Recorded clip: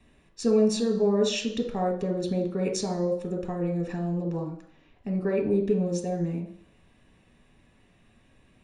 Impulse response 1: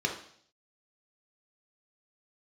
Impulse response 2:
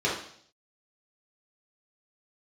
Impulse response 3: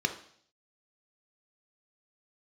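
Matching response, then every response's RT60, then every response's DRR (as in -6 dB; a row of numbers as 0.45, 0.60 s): 1; 0.60, 0.60, 0.60 s; 0.5, -6.5, 5.5 dB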